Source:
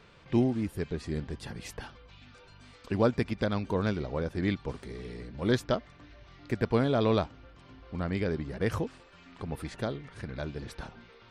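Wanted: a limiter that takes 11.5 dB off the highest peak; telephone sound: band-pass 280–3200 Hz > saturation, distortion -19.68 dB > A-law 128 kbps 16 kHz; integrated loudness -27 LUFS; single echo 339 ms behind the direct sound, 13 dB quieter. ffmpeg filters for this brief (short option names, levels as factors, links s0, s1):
-af "alimiter=limit=0.0708:level=0:latency=1,highpass=280,lowpass=3200,aecho=1:1:339:0.224,asoftclip=threshold=0.0501,volume=4.73" -ar 16000 -c:a pcm_alaw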